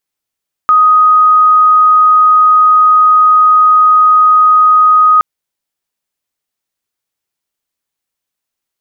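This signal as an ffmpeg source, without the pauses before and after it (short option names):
-f lavfi -i "aevalsrc='0.668*sin(2*PI*1250*t)':d=4.52:s=44100"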